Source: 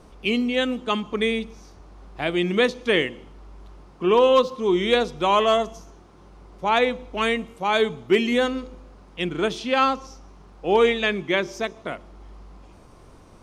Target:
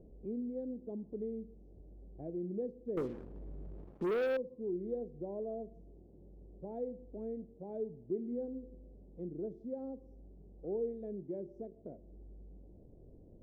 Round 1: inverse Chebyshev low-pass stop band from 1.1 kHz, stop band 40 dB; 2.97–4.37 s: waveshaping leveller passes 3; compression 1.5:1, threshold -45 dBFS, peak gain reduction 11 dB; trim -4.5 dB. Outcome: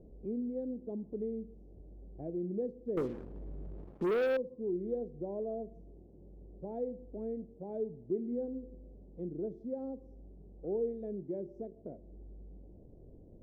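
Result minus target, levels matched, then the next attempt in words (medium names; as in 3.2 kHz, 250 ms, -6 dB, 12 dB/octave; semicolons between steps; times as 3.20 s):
compression: peak gain reduction -2.5 dB
inverse Chebyshev low-pass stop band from 1.1 kHz, stop band 40 dB; 2.97–4.37 s: waveshaping leveller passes 3; compression 1.5:1, threshold -52.5 dBFS, peak gain reduction 13.5 dB; trim -4.5 dB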